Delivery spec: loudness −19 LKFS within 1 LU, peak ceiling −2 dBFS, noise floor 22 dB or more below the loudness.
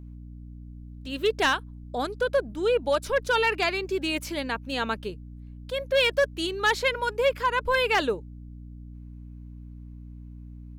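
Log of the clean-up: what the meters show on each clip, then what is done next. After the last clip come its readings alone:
share of clipped samples 0.4%; peaks flattened at −15.5 dBFS; mains hum 60 Hz; hum harmonics up to 300 Hz; level of the hum −39 dBFS; integrated loudness −26.0 LKFS; sample peak −15.5 dBFS; target loudness −19.0 LKFS
→ clipped peaks rebuilt −15.5 dBFS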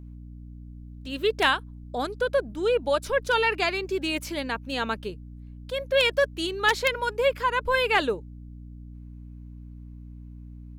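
share of clipped samples 0.0%; mains hum 60 Hz; hum harmonics up to 300 Hz; level of the hum −39 dBFS
→ hum removal 60 Hz, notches 5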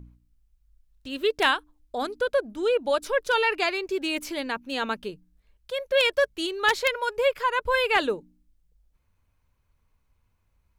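mains hum none found; integrated loudness −25.5 LKFS; sample peak −6.5 dBFS; target loudness −19.0 LKFS
→ level +6.5 dB
brickwall limiter −2 dBFS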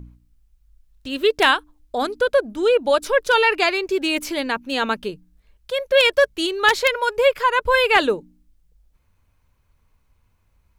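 integrated loudness −19.0 LKFS; sample peak −2.0 dBFS; background noise floor −64 dBFS

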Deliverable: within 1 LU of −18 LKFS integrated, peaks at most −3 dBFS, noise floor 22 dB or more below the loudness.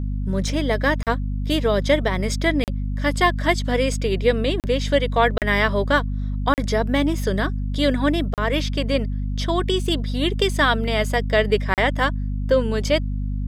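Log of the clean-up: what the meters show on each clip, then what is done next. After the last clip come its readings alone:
number of dropouts 7; longest dropout 38 ms; mains hum 50 Hz; hum harmonics up to 250 Hz; level of the hum −22 dBFS; integrated loudness −21.5 LKFS; sample peak −4.0 dBFS; target loudness −18.0 LKFS
→ repair the gap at 0:01.03/0:02.64/0:04.60/0:05.38/0:06.54/0:08.34/0:11.74, 38 ms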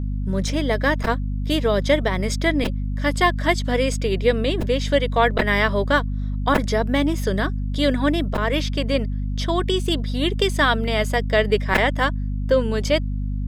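number of dropouts 0; mains hum 50 Hz; hum harmonics up to 250 Hz; level of the hum −22 dBFS
→ mains-hum notches 50/100/150/200/250 Hz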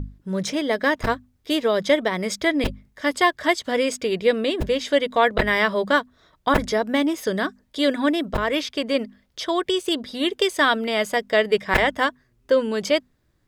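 mains hum none found; integrated loudness −22.5 LKFS; sample peak −5.0 dBFS; target loudness −18.0 LKFS
→ level +4.5 dB
brickwall limiter −3 dBFS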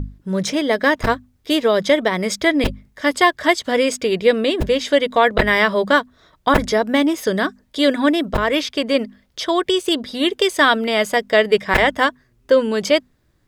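integrated loudness −18.0 LKFS; sample peak −3.0 dBFS; background noise floor −61 dBFS

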